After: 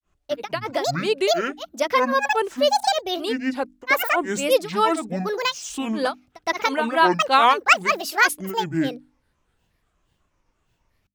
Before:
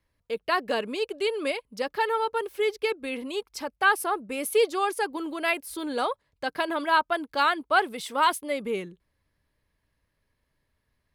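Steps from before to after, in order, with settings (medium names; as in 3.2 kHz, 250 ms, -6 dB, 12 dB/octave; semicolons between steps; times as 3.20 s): granulator 250 ms, grains 8.3 per s, pitch spread up and down by 12 st; hum notches 50/100/150/200/250/300 Hz; trim +8 dB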